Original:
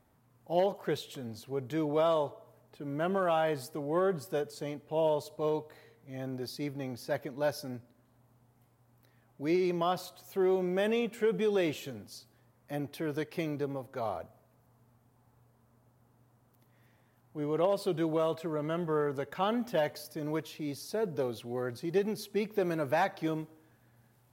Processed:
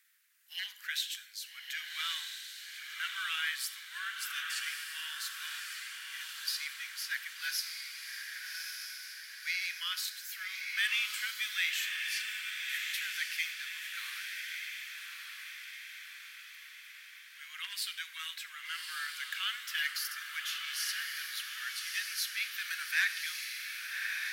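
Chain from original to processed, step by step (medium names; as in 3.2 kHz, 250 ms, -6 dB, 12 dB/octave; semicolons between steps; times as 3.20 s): steep high-pass 1.6 kHz 48 dB/octave; echo that smears into a reverb 1192 ms, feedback 56%, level -3.5 dB; reverberation RT60 0.60 s, pre-delay 28 ms, DRR 13 dB; trim +9 dB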